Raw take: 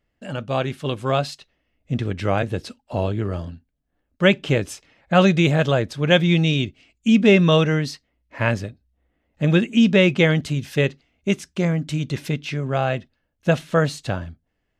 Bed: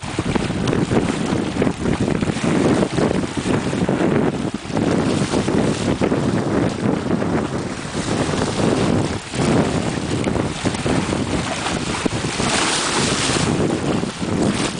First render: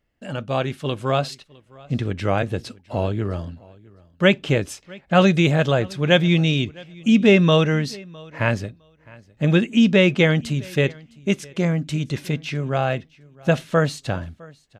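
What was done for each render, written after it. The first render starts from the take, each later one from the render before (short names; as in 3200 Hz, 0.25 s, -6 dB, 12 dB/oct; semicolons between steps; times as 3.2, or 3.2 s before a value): feedback echo 0.659 s, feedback 16%, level -24 dB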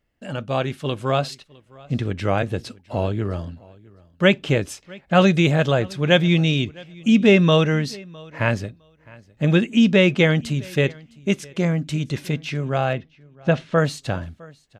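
12.93–13.78 air absorption 120 m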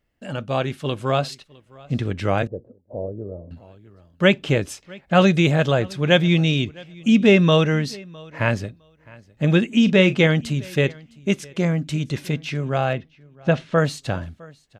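2.47–3.51 ladder low-pass 600 Hz, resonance 60%; 9.67–10.27 doubler 37 ms -13.5 dB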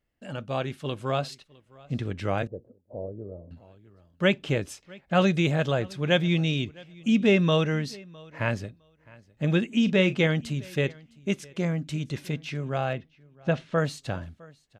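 gain -6.5 dB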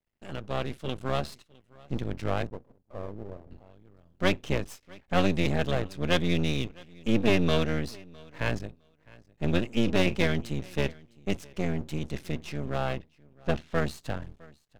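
octaver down 1 oct, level -2 dB; half-wave rectifier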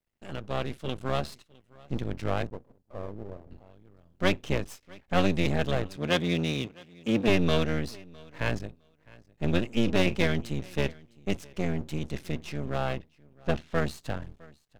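5.96–7.28 HPF 120 Hz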